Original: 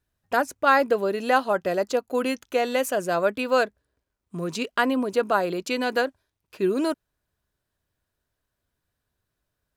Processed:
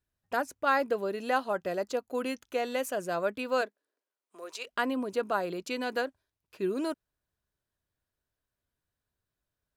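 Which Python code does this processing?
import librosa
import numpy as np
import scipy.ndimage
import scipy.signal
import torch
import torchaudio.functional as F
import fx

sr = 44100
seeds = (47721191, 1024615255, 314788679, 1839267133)

y = fx.highpass(x, sr, hz=fx.line((3.61, 230.0), (4.65, 540.0)), slope=24, at=(3.61, 4.65), fade=0.02)
y = y * 10.0 ** (-7.5 / 20.0)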